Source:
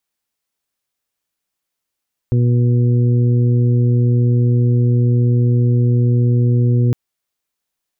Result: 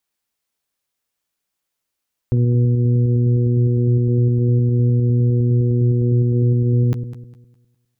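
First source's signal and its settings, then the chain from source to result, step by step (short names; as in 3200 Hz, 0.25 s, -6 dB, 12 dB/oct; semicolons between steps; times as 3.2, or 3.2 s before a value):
steady additive tone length 4.61 s, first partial 121 Hz, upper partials -10/-14/-18.5 dB, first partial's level -11 dB
regenerating reverse delay 0.102 s, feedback 54%, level -12.5 dB; limiter -11 dBFS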